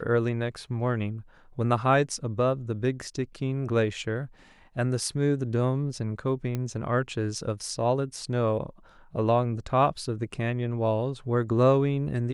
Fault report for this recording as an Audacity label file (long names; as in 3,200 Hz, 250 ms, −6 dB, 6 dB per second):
6.550000	6.550000	click −18 dBFS